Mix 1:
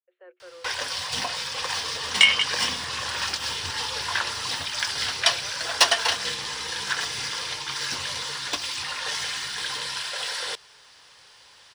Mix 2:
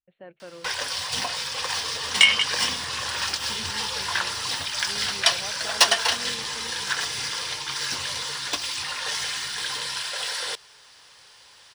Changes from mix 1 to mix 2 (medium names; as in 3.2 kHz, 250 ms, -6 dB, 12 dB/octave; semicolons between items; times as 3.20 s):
speech: remove rippled Chebyshev high-pass 350 Hz, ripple 9 dB; master: add treble shelf 8.6 kHz +5.5 dB